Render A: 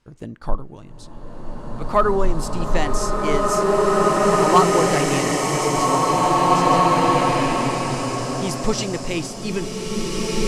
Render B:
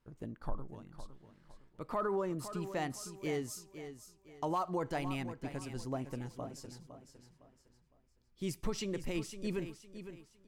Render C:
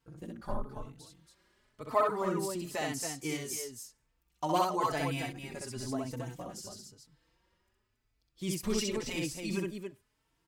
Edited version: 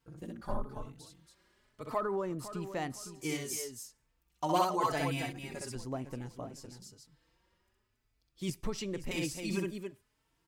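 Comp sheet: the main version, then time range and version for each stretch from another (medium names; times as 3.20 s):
C
1.96–3.19 s: from B, crossfade 0.10 s
5.75–6.82 s: from B
8.50–9.11 s: from B
not used: A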